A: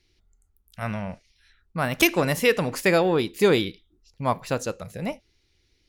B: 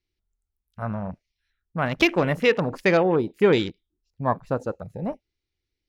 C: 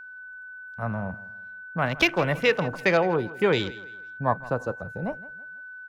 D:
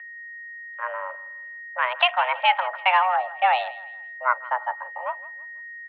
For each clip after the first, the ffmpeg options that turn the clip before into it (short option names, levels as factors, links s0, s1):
-af "afwtdn=0.0224,highshelf=f=4300:g=-6,volume=1.12"
-filter_complex "[0:a]acrossover=split=180|420|3400[s0][s1][s2][s3];[s1]acompressor=threshold=0.0158:ratio=6[s4];[s0][s4][s2][s3]amix=inputs=4:normalize=0,aeval=exprs='val(0)+0.01*sin(2*PI*1500*n/s)':c=same,aecho=1:1:164|328|492:0.112|0.0381|0.013"
-af "highpass=f=230:t=q:w=0.5412,highpass=f=230:t=q:w=1.307,lowpass=f=2800:t=q:w=0.5176,lowpass=f=2800:t=q:w=0.7071,lowpass=f=2800:t=q:w=1.932,afreqshift=370,volume=1.33"